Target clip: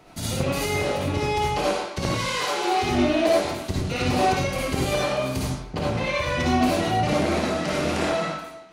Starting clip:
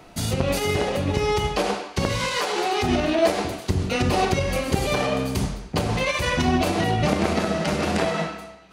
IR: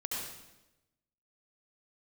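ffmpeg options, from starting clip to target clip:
-filter_complex "[0:a]asettb=1/sr,asplit=3[a][b][c];[a]atrim=end=5.524[d];[b]atrim=start=5.52:end=6.4,asetpts=PTS-STARTPTS,afade=t=in:d=0.004:c=qsin,afade=t=out:st=0.876:d=0.004:c=qsin,lowpass=f=3.3k:p=1[e];[c]atrim=start=6.396[f];[d][e]acrossfade=d=0.004:c1=hsin:c2=qsin[g];[g][f]acrossfade=d=0.004:c1=qsin:c2=hsin[h];[1:a]atrim=start_sample=2205,afade=t=out:st=0.2:d=0.01,atrim=end_sample=9261,asetrate=57330,aresample=44100[i];[h][i]afir=irnorm=-1:irlink=0"

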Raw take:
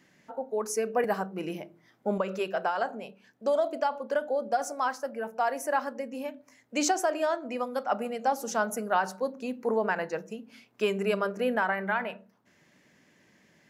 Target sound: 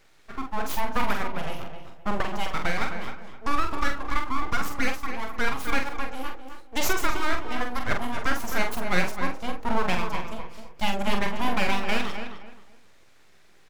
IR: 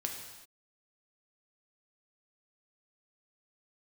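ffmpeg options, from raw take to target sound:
-filter_complex "[0:a]aeval=exprs='abs(val(0))':c=same,asplit=2[a][b];[b]adelay=45,volume=-6dB[c];[a][c]amix=inputs=2:normalize=0,asplit=2[d][e];[e]adelay=260,lowpass=f=2.8k:p=1,volume=-8dB,asplit=2[f][g];[g]adelay=260,lowpass=f=2.8k:p=1,volume=0.27,asplit=2[h][i];[i]adelay=260,lowpass=f=2.8k:p=1,volume=0.27[j];[f][h][j]amix=inputs=3:normalize=0[k];[d][k]amix=inputs=2:normalize=0,volume=4dB"

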